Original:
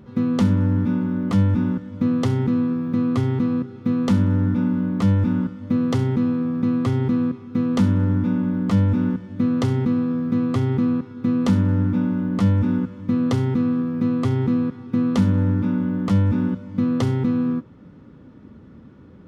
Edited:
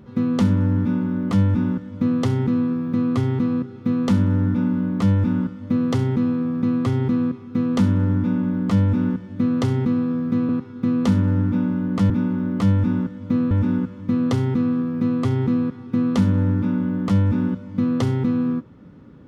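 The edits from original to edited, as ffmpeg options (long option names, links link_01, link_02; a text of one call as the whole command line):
ffmpeg -i in.wav -filter_complex "[0:a]asplit=4[link_01][link_02][link_03][link_04];[link_01]atrim=end=10.492[link_05];[link_02]atrim=start=10.898:end=12.512[link_06];[link_03]atrim=start=0.808:end=2.222[link_07];[link_04]atrim=start=12.508[link_08];[link_05][link_06]acrossfade=duration=0.004:curve1=hsin:curve2=hsin[link_09];[link_09][link_07]acrossfade=duration=0.004:curve1=hsin:curve2=hsin[link_10];[link_10][link_08]acrossfade=duration=0.004:curve1=hsin:curve2=hsin" out.wav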